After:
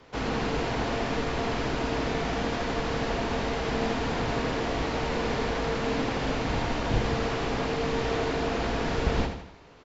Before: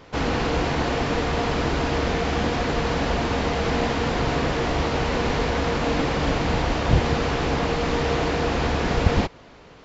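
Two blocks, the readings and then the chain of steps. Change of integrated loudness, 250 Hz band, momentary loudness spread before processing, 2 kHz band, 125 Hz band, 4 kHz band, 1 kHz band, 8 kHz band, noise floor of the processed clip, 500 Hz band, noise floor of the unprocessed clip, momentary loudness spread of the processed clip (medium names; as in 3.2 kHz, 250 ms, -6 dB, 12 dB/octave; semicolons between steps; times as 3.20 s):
-5.5 dB, -5.0 dB, 2 LU, -5.0 dB, -7.5 dB, -5.0 dB, -5.5 dB, no reading, -46 dBFS, -4.5 dB, -47 dBFS, 1 LU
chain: hum notches 50/100/150/200 Hz; frequency shift -14 Hz; feedback delay 81 ms, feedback 45%, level -7.5 dB; trim -6 dB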